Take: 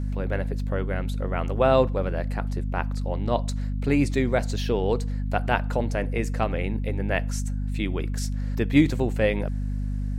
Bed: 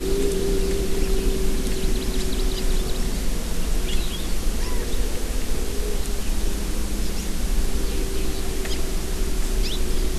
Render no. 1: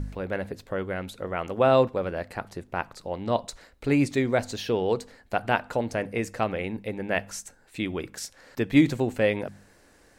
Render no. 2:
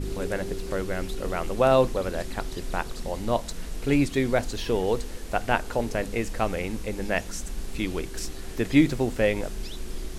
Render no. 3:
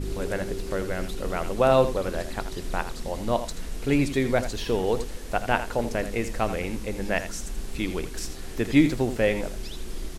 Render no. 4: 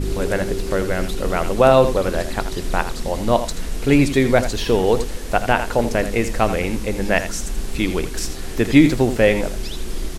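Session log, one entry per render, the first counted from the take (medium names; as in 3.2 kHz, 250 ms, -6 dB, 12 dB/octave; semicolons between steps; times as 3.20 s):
de-hum 50 Hz, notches 5
add bed -11.5 dB
delay 82 ms -11.5 dB
trim +8 dB; peak limiter -2 dBFS, peak gain reduction 3 dB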